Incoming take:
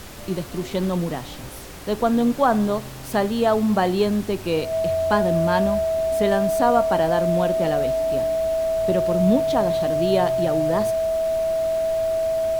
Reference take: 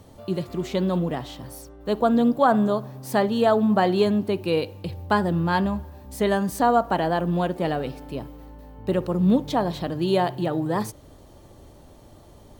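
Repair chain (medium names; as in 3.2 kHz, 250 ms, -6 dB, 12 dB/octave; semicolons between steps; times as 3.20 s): band-stop 650 Hz, Q 30; noise print and reduce 13 dB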